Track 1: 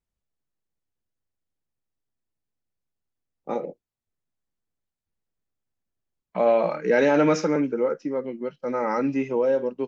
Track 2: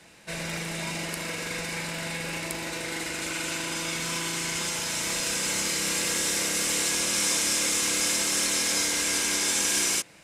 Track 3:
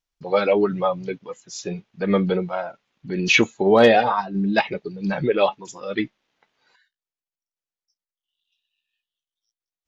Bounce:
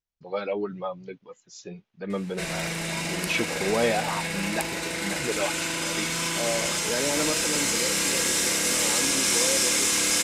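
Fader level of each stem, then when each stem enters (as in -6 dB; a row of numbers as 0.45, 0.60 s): -10.0, +2.5, -10.5 dB; 0.00, 2.10, 0.00 s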